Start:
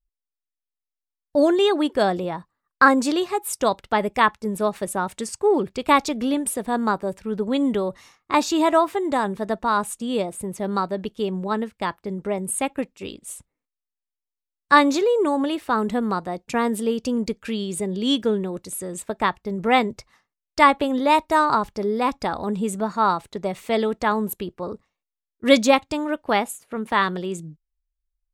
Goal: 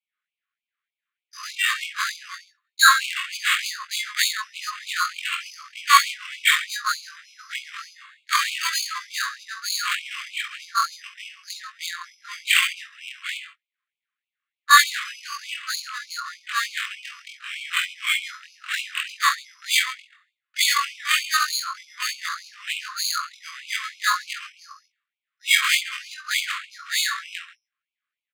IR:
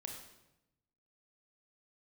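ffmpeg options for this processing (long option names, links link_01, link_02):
-filter_complex "[0:a]afftfilt=real='re':imag='-im':win_size=2048:overlap=0.75,highshelf=frequency=9200:gain=11,aecho=1:1:46|53|64|69|135:0.422|0.211|0.1|0.168|0.211,acrossover=split=730[link_01][link_02];[link_01]acompressor=threshold=-38dB:ratio=12[link_03];[link_02]flanger=delay=2.8:depth=3.8:regen=-29:speed=0.37:shape=sinusoidal[link_04];[link_03][link_04]amix=inputs=2:normalize=0,acrusher=samples=8:mix=1:aa=0.000001,adynamicsmooth=sensitivity=5.5:basefreq=3100,bandreject=frequency=60:width_type=h:width=6,bandreject=frequency=120:width_type=h:width=6,bandreject=frequency=180:width_type=h:width=6,bandreject=frequency=240:width_type=h:width=6,bandreject=frequency=300:width_type=h:width=6,bandreject=frequency=360:width_type=h:width=6,bandreject=frequency=420:width_type=h:width=6,bandreject=frequency=480:width_type=h:width=6,bandreject=frequency=540:width_type=h:width=6,alimiter=level_in=14dB:limit=-1dB:release=50:level=0:latency=1,afftfilt=real='re*gte(b*sr/1024,1000*pow(2200/1000,0.5+0.5*sin(2*PI*3.3*pts/sr)))':imag='im*gte(b*sr/1024,1000*pow(2200/1000,0.5+0.5*sin(2*PI*3.3*pts/sr)))':win_size=1024:overlap=0.75"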